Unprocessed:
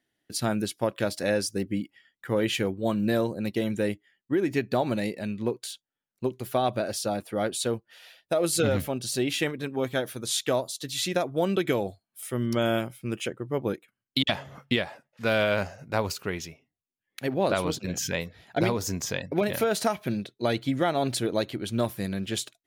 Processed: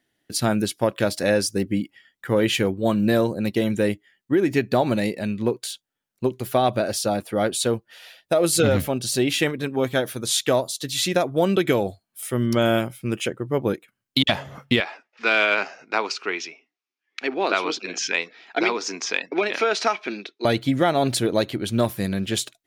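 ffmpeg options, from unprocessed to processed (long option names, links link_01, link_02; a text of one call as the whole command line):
ffmpeg -i in.wav -filter_complex "[0:a]asettb=1/sr,asplit=3[link_01][link_02][link_03];[link_01]atrim=end=14.804[link_04];[link_02]atrim=start=14.8:end=20.45,asetpts=PTS-STARTPTS,afade=type=in:duration=0.004:curve=qsin,afade=type=out:start_time=5.646:duration=0.004:curve=qsin,highpass=frequency=310:width=0.5412,highpass=frequency=310:width=1.3066,equalizer=frequency=560:width_type=q:width=4:gain=-10,equalizer=frequency=1300:width_type=q:width=4:gain=4,equalizer=frequency=2400:width_type=q:width=4:gain=7,equalizer=frequency=5500:width_type=q:width=4:gain=3,lowpass=frequency=5900:width=0.5412,lowpass=frequency=5900:width=1.3066[link_05];[link_03]atrim=start=20.446[link_06];[link_04][link_05]acrossfade=duration=0.004:curve1=hsin:curve2=qsin[link_07];[link_07][link_06]acrossfade=duration=0.004:curve1=qsin:curve2=hsin,acontrast=44" out.wav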